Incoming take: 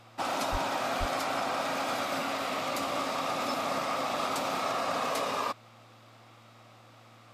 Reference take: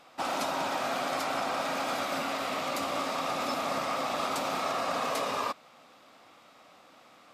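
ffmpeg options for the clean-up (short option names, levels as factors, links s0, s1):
-filter_complex "[0:a]bandreject=f=114.2:t=h:w=4,bandreject=f=228.4:t=h:w=4,bandreject=f=342.6:t=h:w=4,asplit=3[s0][s1][s2];[s0]afade=t=out:st=0.51:d=0.02[s3];[s1]highpass=f=140:w=0.5412,highpass=f=140:w=1.3066,afade=t=in:st=0.51:d=0.02,afade=t=out:st=0.63:d=0.02[s4];[s2]afade=t=in:st=0.63:d=0.02[s5];[s3][s4][s5]amix=inputs=3:normalize=0,asplit=3[s6][s7][s8];[s6]afade=t=out:st=0.99:d=0.02[s9];[s7]highpass=f=140:w=0.5412,highpass=f=140:w=1.3066,afade=t=in:st=0.99:d=0.02,afade=t=out:st=1.11:d=0.02[s10];[s8]afade=t=in:st=1.11:d=0.02[s11];[s9][s10][s11]amix=inputs=3:normalize=0"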